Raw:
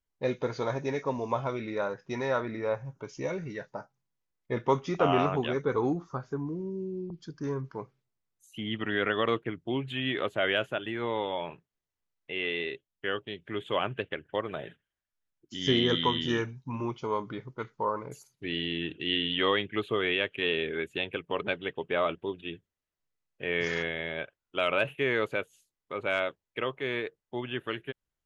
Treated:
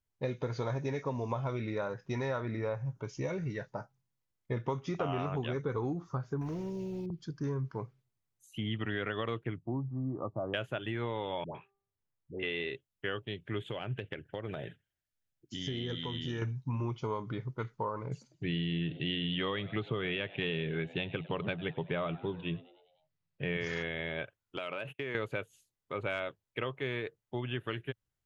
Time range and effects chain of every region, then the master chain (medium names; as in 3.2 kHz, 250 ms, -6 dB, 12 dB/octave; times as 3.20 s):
6.41–7.06 s: peaking EQ 1.1 kHz -8 dB 0.35 oct + spectrum-flattening compressor 2:1
9.58–10.54 s: rippled Chebyshev low-pass 1.2 kHz, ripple 3 dB + peaking EQ 420 Hz -9 dB 0.36 oct
11.44–12.43 s: treble shelf 2.4 kHz -12 dB + de-hum 395.6 Hz, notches 3 + phase dispersion highs, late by 112 ms, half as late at 720 Hz
13.66–16.42 s: peaking EQ 1.1 kHz -9 dB 0.38 oct + compression, threshold -33 dBFS
18.11–23.57 s: low-pass 5.5 kHz 24 dB/octave + peaking EQ 160 Hz +12.5 dB 0.46 oct + frequency-shifting echo 100 ms, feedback 60%, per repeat +92 Hz, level -22 dB
24.57–25.15 s: gate -45 dBFS, range -27 dB + high-pass 150 Hz + compression 5:1, threshold -33 dBFS
whole clip: peaking EQ 110 Hz +10 dB 0.99 oct; compression, threshold -29 dBFS; trim -1.5 dB